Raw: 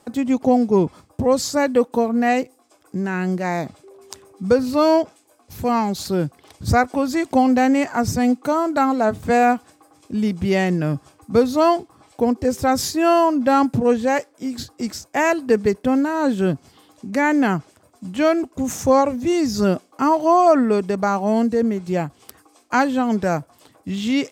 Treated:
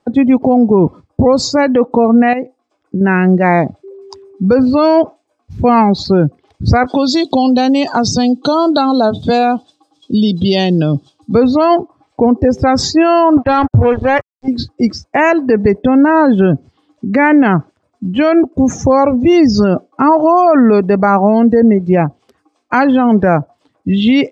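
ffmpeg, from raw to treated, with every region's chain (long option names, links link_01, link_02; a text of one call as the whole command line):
ffmpeg -i in.wav -filter_complex "[0:a]asettb=1/sr,asplit=3[link_01][link_02][link_03];[link_01]atrim=end=2.334[link_04];[link_02]atrim=start=2.33:end=3.01,asetpts=PTS-STARTPTS,afade=type=in:duration=0.004:curve=qsin,afade=type=out:start_time=0.676:duration=0.004:curve=qsin,highshelf=frequency=7200:gain=-6.5,acompressor=threshold=-25dB:ratio=16:attack=3.2:release=140:knee=1:detection=peak[link_05];[link_03]atrim=start=3.006[link_06];[link_04][link_05]acrossfade=duration=0.004:curve1=hsin:curve2=qsin[link_07];[link_07][link_06]acrossfade=duration=0.004:curve1=qsin:curve2=hsin,asettb=1/sr,asplit=3[link_08][link_09][link_10];[link_08]atrim=end=6.864[link_11];[link_09]atrim=start=6.86:end=11.35,asetpts=PTS-STARTPTS,afade=type=in:duration=0.004:curve=qsin,afade=type=out:start_time=4.486:duration=0.004:curve=qsin,highshelf=frequency=2700:width_type=q:width=3:gain=9,acompressor=threshold=-20dB:ratio=6:attack=3.2:release=140:knee=1:detection=peak,highpass=110[link_12];[link_10]atrim=start=11.346[link_13];[link_11][link_12]acrossfade=duration=0.004:curve1=hsin:curve2=qsin[link_14];[link_14][link_13]acrossfade=duration=0.004:curve1=qsin:curve2=hsin,asettb=1/sr,asplit=3[link_15][link_16][link_17];[link_15]atrim=end=13.374[link_18];[link_16]atrim=start=13.37:end=14.48,asetpts=PTS-STARTPTS,afade=type=in:duration=0.004:curve=qsin,afade=type=out:start_time=1.106:duration=0.004:curve=qsin,lowshelf=frequency=140:width_type=q:width=3:gain=11.5,aeval=exprs='sgn(val(0))*max(abs(val(0))-0.0355,0)':channel_layout=same[link_19];[link_17]atrim=start=14.476[link_20];[link_18][link_19]acrossfade=duration=0.004:curve1=hsin:curve2=qsin[link_21];[link_21][link_20]acrossfade=duration=0.004:curve1=qsin:curve2=hsin,lowpass=4900,afftdn=noise_reduction=21:noise_floor=-35,alimiter=level_in=14dB:limit=-1dB:release=50:level=0:latency=1,volume=-1dB" out.wav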